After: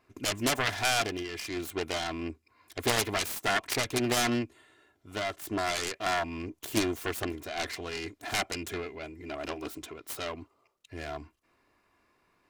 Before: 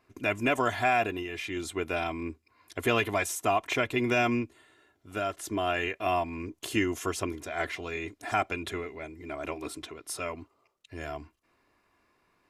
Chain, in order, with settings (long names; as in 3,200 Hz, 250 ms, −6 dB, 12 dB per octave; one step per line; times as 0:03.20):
phase distortion by the signal itself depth 0.56 ms